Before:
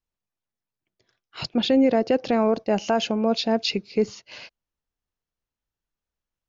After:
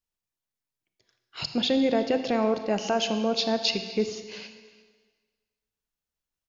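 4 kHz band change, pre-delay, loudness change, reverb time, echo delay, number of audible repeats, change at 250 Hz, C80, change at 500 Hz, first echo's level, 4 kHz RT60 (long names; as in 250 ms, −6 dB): +0.5 dB, 21 ms, −3.5 dB, 1.5 s, 351 ms, 1, −4.5 dB, 10.0 dB, −3.5 dB, −22.5 dB, 1.4 s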